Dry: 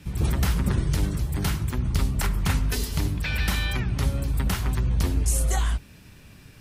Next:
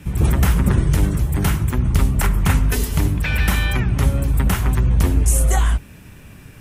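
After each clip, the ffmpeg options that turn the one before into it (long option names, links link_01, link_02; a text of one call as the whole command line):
ffmpeg -i in.wav -af "equalizer=frequency=4500:width_type=o:width=0.85:gain=-9,volume=7.5dB" out.wav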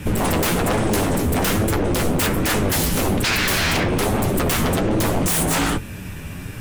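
ffmpeg -i in.wav -filter_complex "[0:a]asplit=2[link_01][link_02];[link_02]alimiter=limit=-11.5dB:level=0:latency=1:release=235,volume=-0.5dB[link_03];[link_01][link_03]amix=inputs=2:normalize=0,aeval=exprs='0.126*(abs(mod(val(0)/0.126+3,4)-2)-1)':channel_layout=same,flanger=delay=9.1:depth=3.2:regen=51:speed=1.2:shape=sinusoidal,volume=7.5dB" out.wav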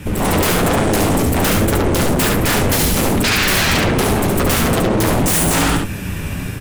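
ffmpeg -i in.wav -af "dynaudnorm=framelen=100:gausssize=5:maxgain=7dB,asoftclip=type=hard:threshold=-14.5dB,aecho=1:1:71:0.631" out.wav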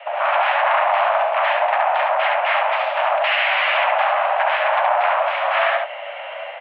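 ffmpeg -i in.wav -af "highpass=frequency=220:width_type=q:width=0.5412,highpass=frequency=220:width_type=q:width=1.307,lowpass=frequency=2500:width_type=q:width=0.5176,lowpass=frequency=2500:width_type=q:width=0.7071,lowpass=frequency=2500:width_type=q:width=1.932,afreqshift=390" out.wav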